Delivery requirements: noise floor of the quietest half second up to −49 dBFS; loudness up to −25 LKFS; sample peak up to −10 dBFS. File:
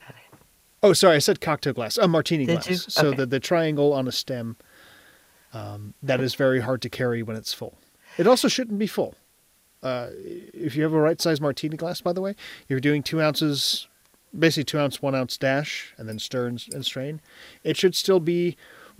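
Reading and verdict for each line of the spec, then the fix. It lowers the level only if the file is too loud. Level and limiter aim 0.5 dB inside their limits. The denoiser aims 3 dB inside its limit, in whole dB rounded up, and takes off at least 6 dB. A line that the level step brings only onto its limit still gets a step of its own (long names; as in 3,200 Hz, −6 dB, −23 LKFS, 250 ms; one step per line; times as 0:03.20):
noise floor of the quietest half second −62 dBFS: in spec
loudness −23.5 LKFS: out of spec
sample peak −4.0 dBFS: out of spec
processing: level −2 dB
brickwall limiter −10.5 dBFS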